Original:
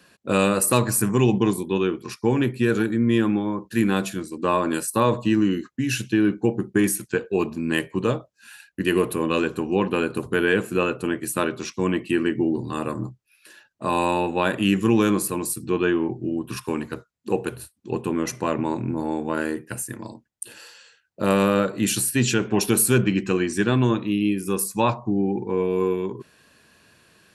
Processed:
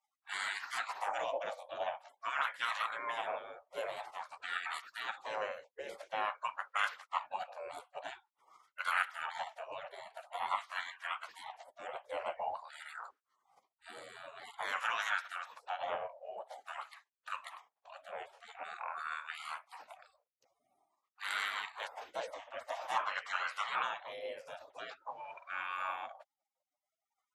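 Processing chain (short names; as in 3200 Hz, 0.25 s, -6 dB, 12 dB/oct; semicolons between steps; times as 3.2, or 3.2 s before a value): spectral gate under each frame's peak -30 dB weak; wah 0.48 Hz 540–1400 Hz, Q 3.2; gain +16.5 dB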